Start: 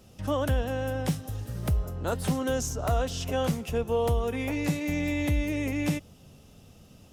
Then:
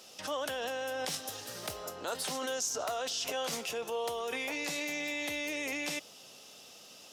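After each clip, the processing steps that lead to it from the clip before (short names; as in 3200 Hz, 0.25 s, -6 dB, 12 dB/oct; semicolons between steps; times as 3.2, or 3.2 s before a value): HPF 520 Hz 12 dB/oct; bell 4800 Hz +8.5 dB 1.6 oct; in parallel at 0 dB: negative-ratio compressor -38 dBFS, ratio -0.5; on the sum: gain -6 dB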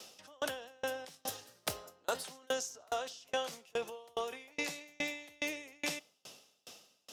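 on a send at -17.5 dB: reverb RT60 0.85 s, pre-delay 42 ms; on the sum: dB-ramp tremolo decaying 2.4 Hz, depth 35 dB; gain +4.5 dB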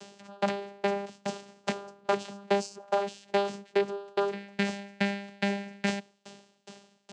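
rattling part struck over -46 dBFS, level -23 dBFS; vocoder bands 8, saw 200 Hz; gain +9 dB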